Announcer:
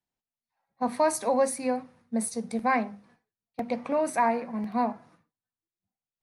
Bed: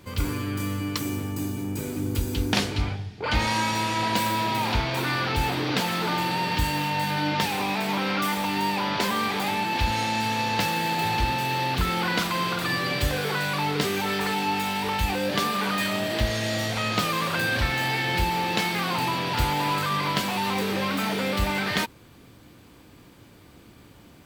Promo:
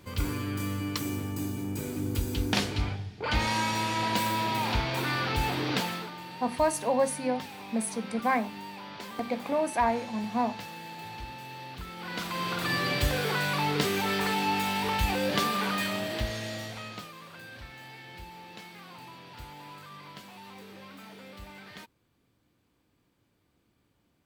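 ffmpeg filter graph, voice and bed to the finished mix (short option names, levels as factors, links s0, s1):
-filter_complex "[0:a]adelay=5600,volume=0.841[s0];[1:a]volume=3.55,afade=t=out:st=5.77:d=0.34:silence=0.223872,afade=t=in:st=11.97:d=0.82:silence=0.188365,afade=t=out:st=15.39:d=1.73:silence=0.112202[s1];[s0][s1]amix=inputs=2:normalize=0"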